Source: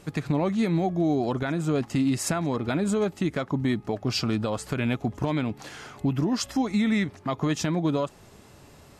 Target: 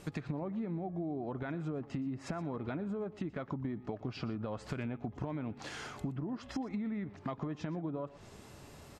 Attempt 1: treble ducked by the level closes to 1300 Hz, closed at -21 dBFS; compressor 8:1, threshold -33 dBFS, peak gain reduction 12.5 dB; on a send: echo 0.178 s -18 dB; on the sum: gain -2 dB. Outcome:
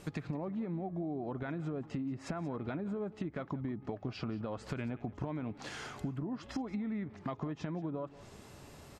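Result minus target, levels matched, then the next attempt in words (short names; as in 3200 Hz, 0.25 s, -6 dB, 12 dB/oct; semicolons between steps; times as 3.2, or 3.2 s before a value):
echo 58 ms late
treble ducked by the level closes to 1300 Hz, closed at -21 dBFS; compressor 8:1, threshold -33 dBFS, peak gain reduction 12.5 dB; on a send: echo 0.12 s -18 dB; on the sum: gain -2 dB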